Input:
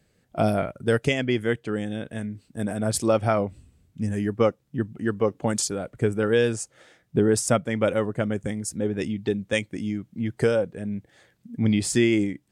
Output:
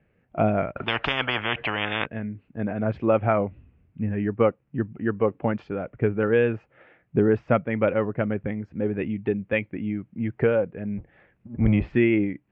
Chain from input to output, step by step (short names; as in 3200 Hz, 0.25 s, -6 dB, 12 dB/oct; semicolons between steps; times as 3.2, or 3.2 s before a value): 10.97–11.95 octaver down 1 oct, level -2 dB; elliptic low-pass 2600 Hz, stop band 80 dB; 0.76–2.06 spectral compressor 10:1; gain +1 dB